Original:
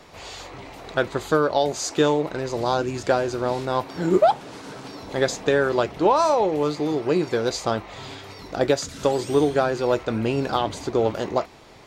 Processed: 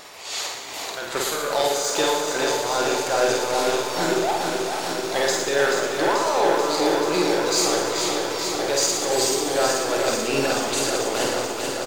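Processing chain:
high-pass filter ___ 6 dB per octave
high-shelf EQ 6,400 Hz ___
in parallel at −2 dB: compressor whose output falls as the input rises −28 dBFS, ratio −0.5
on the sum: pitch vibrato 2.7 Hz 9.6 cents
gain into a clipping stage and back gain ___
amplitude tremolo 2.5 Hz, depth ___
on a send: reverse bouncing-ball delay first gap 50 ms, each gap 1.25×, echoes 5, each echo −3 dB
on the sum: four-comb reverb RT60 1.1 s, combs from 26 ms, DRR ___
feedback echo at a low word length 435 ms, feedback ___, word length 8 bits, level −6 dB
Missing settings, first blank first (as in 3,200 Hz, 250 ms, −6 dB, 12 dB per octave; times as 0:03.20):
740 Hz, +11.5 dB, 16.5 dB, 64%, 13 dB, 80%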